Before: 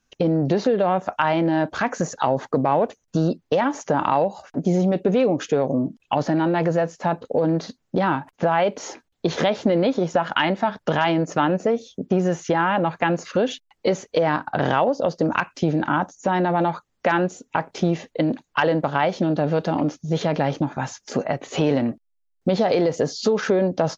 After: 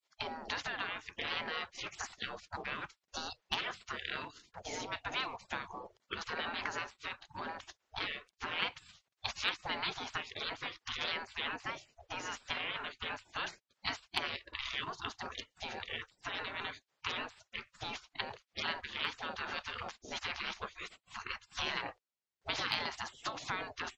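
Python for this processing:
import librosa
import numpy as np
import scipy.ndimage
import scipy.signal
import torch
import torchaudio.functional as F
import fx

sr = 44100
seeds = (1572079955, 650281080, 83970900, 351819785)

y = fx.spec_gate(x, sr, threshold_db=-25, keep='weak')
y = scipy.signal.sosfilt(scipy.signal.butter(2, 5900.0, 'lowpass', fs=sr, output='sos'), y)
y = np.clip(10.0 ** (21.0 / 20.0) * y, -1.0, 1.0) / 10.0 ** (21.0 / 20.0)
y = y * 10.0 ** (2.0 / 20.0)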